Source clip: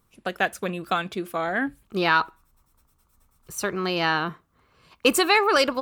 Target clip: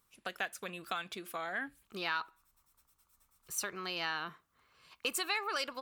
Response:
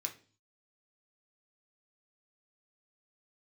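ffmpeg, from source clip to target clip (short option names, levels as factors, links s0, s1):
-af "acompressor=threshold=0.0316:ratio=2.5,tiltshelf=f=800:g=-6.5,volume=0.376"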